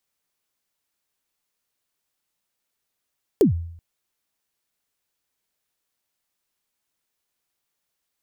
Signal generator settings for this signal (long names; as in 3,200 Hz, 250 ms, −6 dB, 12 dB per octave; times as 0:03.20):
synth kick length 0.38 s, from 470 Hz, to 84 Hz, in 118 ms, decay 0.68 s, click on, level −9.5 dB